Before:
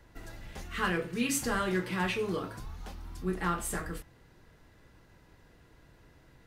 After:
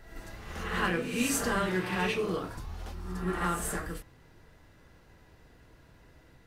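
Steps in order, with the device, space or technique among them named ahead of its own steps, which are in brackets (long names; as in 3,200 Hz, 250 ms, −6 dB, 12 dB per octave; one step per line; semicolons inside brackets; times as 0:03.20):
reverse reverb (reversed playback; convolution reverb RT60 0.95 s, pre-delay 44 ms, DRR 2.5 dB; reversed playback)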